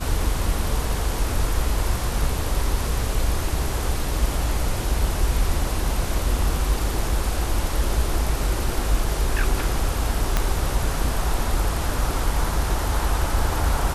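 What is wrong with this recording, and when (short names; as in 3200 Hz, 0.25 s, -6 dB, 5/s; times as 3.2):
10.37 pop -6 dBFS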